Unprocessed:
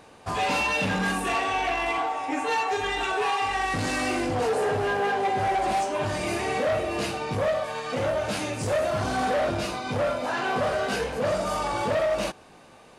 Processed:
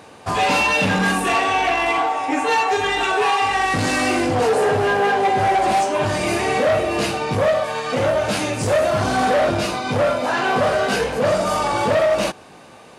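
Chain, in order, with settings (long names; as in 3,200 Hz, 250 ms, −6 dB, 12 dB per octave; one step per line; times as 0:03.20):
high-pass filter 68 Hz
level +7.5 dB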